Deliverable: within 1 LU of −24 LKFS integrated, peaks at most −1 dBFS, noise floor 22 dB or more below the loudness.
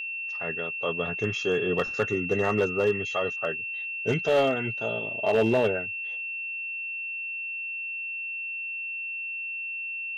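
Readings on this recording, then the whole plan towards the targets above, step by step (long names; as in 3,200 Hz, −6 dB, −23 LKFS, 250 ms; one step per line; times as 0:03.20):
share of clipped samples 0.5%; peaks flattened at −16.5 dBFS; interfering tone 2,700 Hz; level of the tone −31 dBFS; integrated loudness −28.0 LKFS; sample peak −16.5 dBFS; target loudness −24.0 LKFS
→ clipped peaks rebuilt −16.5 dBFS
notch filter 2,700 Hz, Q 30
level +4 dB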